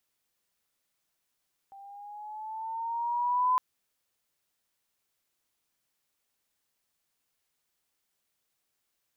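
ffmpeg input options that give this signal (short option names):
-f lavfi -i "aevalsrc='pow(10,(-21+25*(t/1.86-1))/20)*sin(2*PI*784*1.86/(4.5*log(2)/12)*(exp(4.5*log(2)/12*t/1.86)-1))':d=1.86:s=44100"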